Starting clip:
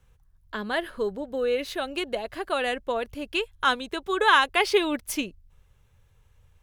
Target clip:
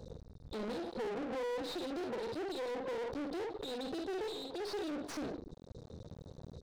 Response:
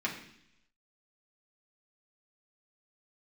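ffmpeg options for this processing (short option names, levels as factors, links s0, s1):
-filter_complex "[0:a]acompressor=threshold=0.0112:ratio=8,lowpass=5100,asplit=2[s0][s1];[s1]aecho=0:1:51|66:0.422|0.15[s2];[s0][s2]amix=inputs=2:normalize=0,afftfilt=real='re*(1-between(b*sr/4096,530,3600))':imag='im*(1-between(b*sr/4096,530,3600))':win_size=4096:overlap=0.75,asplit=2[s3][s4];[s4]adelay=149,lowpass=f=3100:p=1,volume=0.0891,asplit=2[s5][s6];[s6]adelay=149,lowpass=f=3100:p=1,volume=0.26[s7];[s5][s7]amix=inputs=2:normalize=0[s8];[s3][s8]amix=inputs=2:normalize=0,aeval=exprs='max(val(0),0)':c=same,highshelf=f=3300:g=-11.5,asplit=2[s9][s10];[s10]highpass=f=720:p=1,volume=79.4,asoftclip=type=tanh:threshold=0.0251[s11];[s9][s11]amix=inputs=2:normalize=0,lowpass=f=2700:p=1,volume=0.501,volume=1.12"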